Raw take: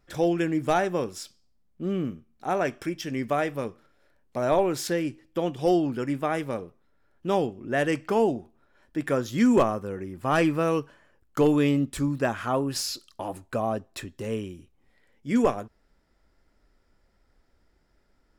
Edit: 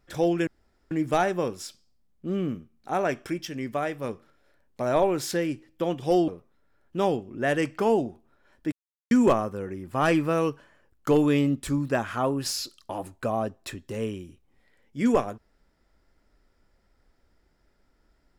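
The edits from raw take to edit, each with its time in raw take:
0:00.47: splice in room tone 0.44 s
0:03.03–0:03.60: clip gain −3 dB
0:05.84–0:06.58: remove
0:09.02–0:09.41: silence

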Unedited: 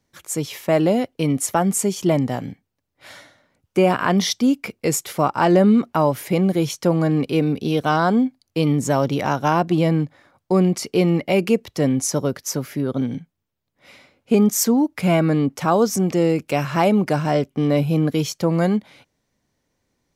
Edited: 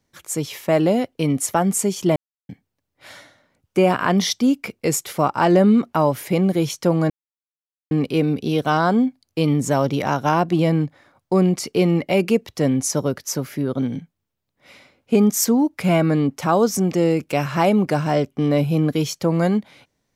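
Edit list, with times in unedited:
0:02.16–0:02.49: silence
0:07.10: splice in silence 0.81 s

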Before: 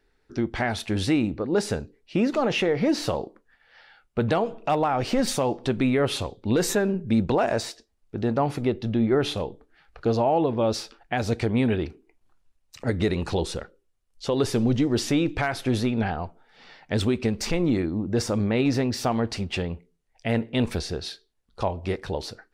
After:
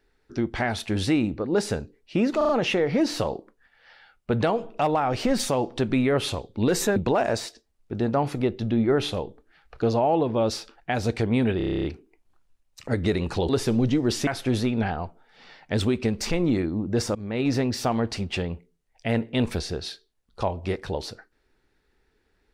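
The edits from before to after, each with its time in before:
0:02.37: stutter 0.04 s, 4 plays
0:06.84–0:07.19: remove
0:11.80: stutter 0.03 s, 10 plays
0:13.45–0:14.36: remove
0:15.14–0:15.47: remove
0:18.35–0:18.73: fade in linear, from −19.5 dB

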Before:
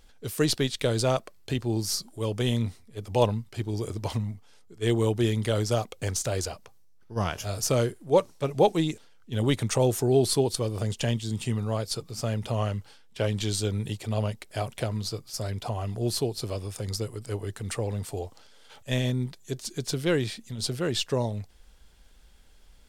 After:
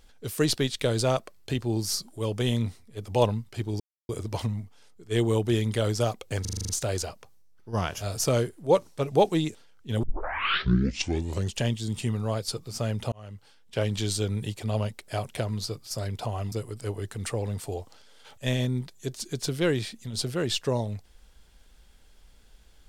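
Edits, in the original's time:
0:03.80: splice in silence 0.29 s
0:06.12: stutter 0.04 s, 8 plays
0:09.46: tape start 1.56 s
0:12.55–0:13.21: fade in
0:15.95–0:16.97: remove

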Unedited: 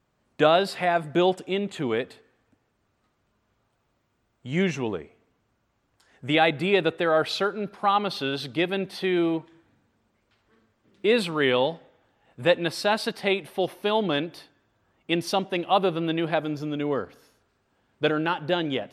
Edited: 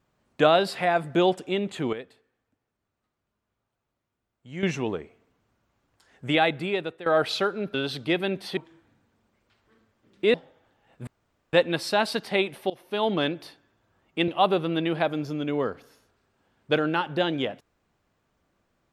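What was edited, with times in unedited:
0:01.93–0:04.63: clip gain −10.5 dB
0:06.27–0:07.06: fade out, to −16 dB
0:07.74–0:08.23: remove
0:09.06–0:09.38: remove
0:11.15–0:11.72: remove
0:12.45: splice in room tone 0.46 s
0:13.62–0:14.02: fade in, from −20 dB
0:15.20–0:15.60: remove

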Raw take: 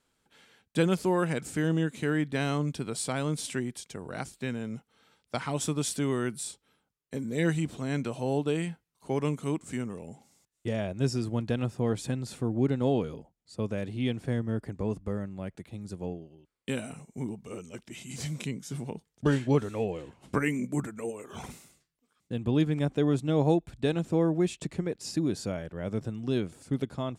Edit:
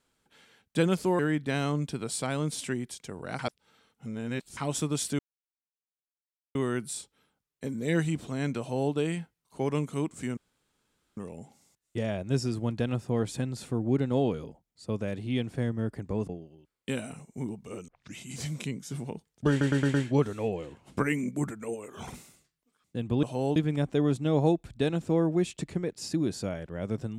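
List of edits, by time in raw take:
0:01.19–0:02.05: remove
0:04.25–0:05.43: reverse
0:06.05: splice in silence 1.36 s
0:08.10–0:08.43: duplicate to 0:22.59
0:09.87: splice in room tone 0.80 s
0:14.99–0:16.09: remove
0:17.68: tape start 0.27 s
0:19.30: stutter 0.11 s, 5 plays

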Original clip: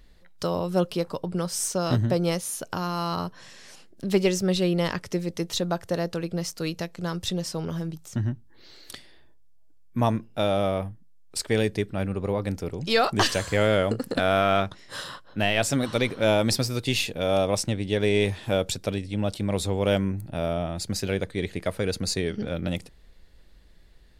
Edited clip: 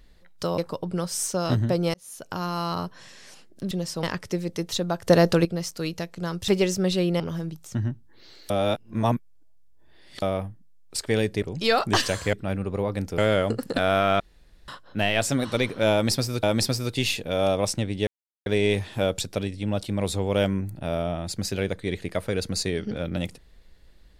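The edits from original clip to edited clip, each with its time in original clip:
0:00.58–0:00.99: remove
0:02.35–0:02.85: fade in
0:04.12–0:04.84: swap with 0:07.29–0:07.61
0:05.88–0:06.26: clip gain +10 dB
0:08.91–0:10.63: reverse
0:11.83–0:12.68: move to 0:13.59
0:14.61–0:15.09: fill with room tone
0:16.33–0:16.84: repeat, 2 plays
0:17.97: splice in silence 0.39 s

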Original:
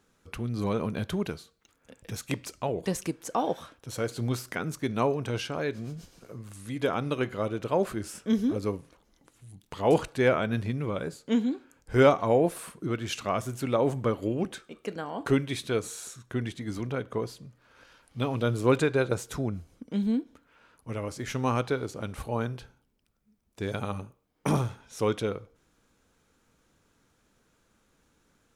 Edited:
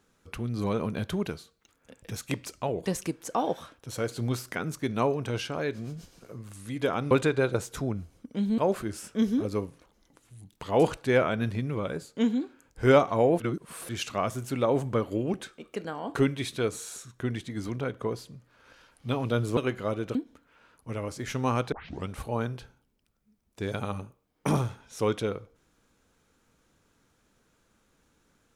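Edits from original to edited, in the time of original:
0:07.11–0:07.69: swap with 0:18.68–0:20.15
0:12.51–0:13.00: reverse
0:21.72: tape start 0.36 s

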